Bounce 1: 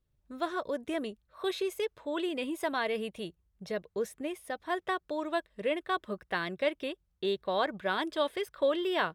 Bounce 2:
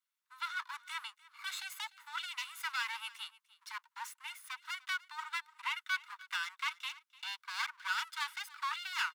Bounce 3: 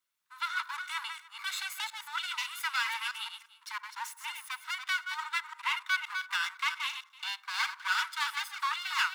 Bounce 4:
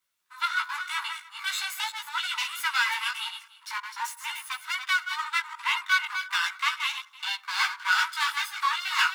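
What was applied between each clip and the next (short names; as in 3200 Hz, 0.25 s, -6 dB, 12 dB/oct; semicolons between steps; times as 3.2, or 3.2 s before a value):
minimum comb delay 1.4 ms; steep high-pass 940 Hz 96 dB/oct; echo 0.298 s -20.5 dB; gain +1 dB
reverse delay 0.173 s, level -6.5 dB; reverb RT60 0.90 s, pre-delay 47 ms, DRR 20 dB; gain +5 dB
chorus voices 2, 0.42 Hz, delay 16 ms, depth 4.6 ms; gain +8.5 dB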